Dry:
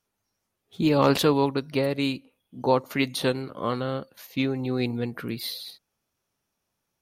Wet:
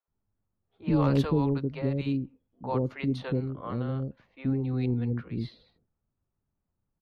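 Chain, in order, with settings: RIAA curve playback; bands offset in time highs, lows 80 ms, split 530 Hz; low-pass opened by the level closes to 1500 Hz, open at -13 dBFS; gain -8 dB

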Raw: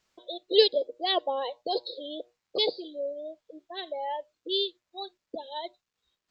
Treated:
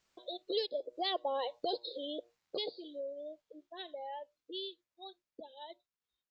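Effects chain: Doppler pass-by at 1.42, 7 m/s, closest 2.3 m; compressor 2.5:1, threshold -49 dBFS, peak gain reduction 17 dB; gain +9.5 dB

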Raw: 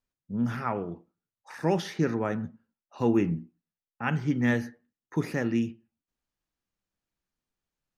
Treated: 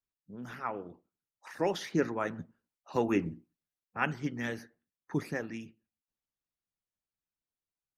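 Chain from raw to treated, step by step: Doppler pass-by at 3.04, 9 m/s, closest 12 m; harmonic-percussive split harmonic -14 dB; gain +3 dB

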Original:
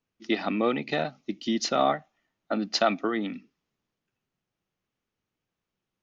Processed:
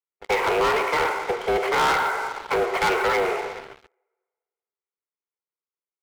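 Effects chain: minimum comb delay 1 ms; plate-style reverb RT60 1.7 s, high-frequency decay 0.9×, DRR 5.5 dB; mistuned SSB +170 Hz 220–2400 Hz; sample leveller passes 5; gain -4.5 dB

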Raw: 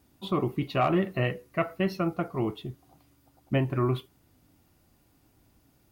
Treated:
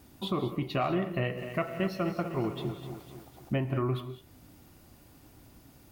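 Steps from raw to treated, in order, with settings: compressor 2:1, threshold -45 dBFS, peak gain reduction 13.5 dB; non-linear reverb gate 0.23 s rising, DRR 10.5 dB; 1.12–3.55 lo-fi delay 0.252 s, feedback 55%, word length 10-bit, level -9.5 dB; gain +8 dB

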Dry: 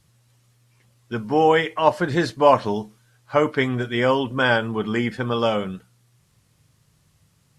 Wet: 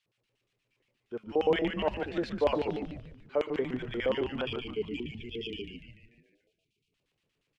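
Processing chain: LFO band-pass square 8.5 Hz 440–2700 Hz; spectral delete 4.45–6.93, 470–2300 Hz; frequency-shifting echo 0.146 s, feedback 49%, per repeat -140 Hz, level -6 dB; gain -5 dB

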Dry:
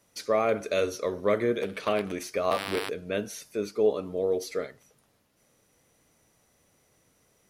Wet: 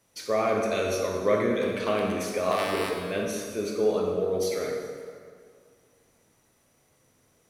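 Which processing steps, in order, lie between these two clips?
transient shaper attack +1 dB, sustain +5 dB; plate-style reverb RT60 2.1 s, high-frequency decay 0.65×, DRR -1 dB; gain -2.5 dB

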